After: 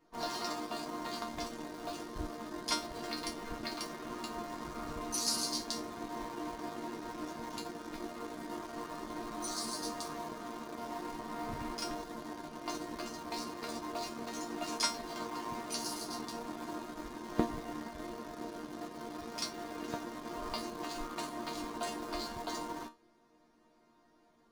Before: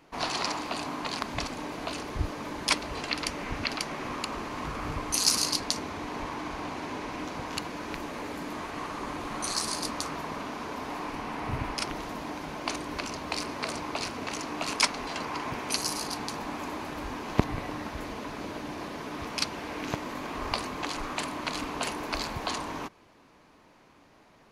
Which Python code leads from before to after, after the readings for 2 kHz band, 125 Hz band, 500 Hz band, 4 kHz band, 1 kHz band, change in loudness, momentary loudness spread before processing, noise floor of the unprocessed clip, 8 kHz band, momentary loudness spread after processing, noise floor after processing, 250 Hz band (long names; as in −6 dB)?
−11.0 dB, −12.0 dB, −5.0 dB, −8.0 dB, −6.5 dB, −7.5 dB, 9 LU, −58 dBFS, −8.0 dB, 8 LU, −67 dBFS, −4.5 dB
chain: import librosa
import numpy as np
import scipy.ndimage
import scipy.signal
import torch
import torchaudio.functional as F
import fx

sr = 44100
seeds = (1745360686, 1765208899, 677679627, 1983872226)

p1 = fx.resonator_bank(x, sr, root=58, chord='sus4', decay_s=0.25)
p2 = fx.quant_dither(p1, sr, seeds[0], bits=8, dither='none')
p3 = p1 + (p2 * librosa.db_to_amplitude(-7.0))
p4 = fx.graphic_eq_15(p3, sr, hz=(160, 400, 2500), db=(7, 5, -8))
p5 = fx.doppler_dist(p4, sr, depth_ms=0.16)
y = p5 * librosa.db_to_amplitude(6.0)